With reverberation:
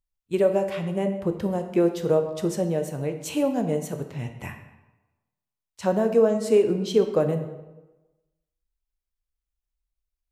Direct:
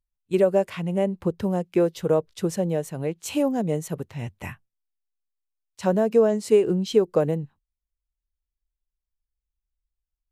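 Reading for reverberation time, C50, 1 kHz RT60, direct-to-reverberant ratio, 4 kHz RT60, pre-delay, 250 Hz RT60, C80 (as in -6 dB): 1.1 s, 8.5 dB, 1.1 s, 5.5 dB, 0.75 s, 7 ms, 1.0 s, 10.5 dB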